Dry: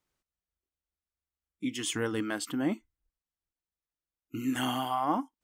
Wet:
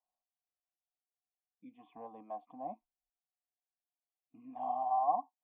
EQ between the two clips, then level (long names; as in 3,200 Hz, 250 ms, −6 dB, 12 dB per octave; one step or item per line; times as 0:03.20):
formant resonators in series a
phaser with its sweep stopped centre 370 Hz, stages 6
+7.0 dB